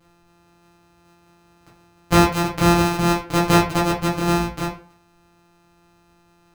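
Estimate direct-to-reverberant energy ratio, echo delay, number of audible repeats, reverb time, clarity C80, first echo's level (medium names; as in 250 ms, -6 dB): -5.5 dB, no echo, no echo, 0.45 s, 12.5 dB, no echo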